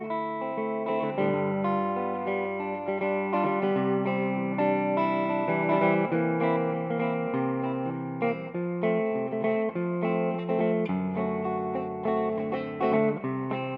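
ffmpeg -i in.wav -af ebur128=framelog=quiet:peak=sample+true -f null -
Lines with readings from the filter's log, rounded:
Integrated loudness:
  I:         -27.8 LUFS
  Threshold: -37.8 LUFS
Loudness range:
  LRA:         2.8 LU
  Threshold: -47.6 LUFS
  LRA low:   -28.8 LUFS
  LRA high:  -26.0 LUFS
Sample peak:
  Peak:      -11.1 dBFS
True peak:
  Peak:      -11.1 dBFS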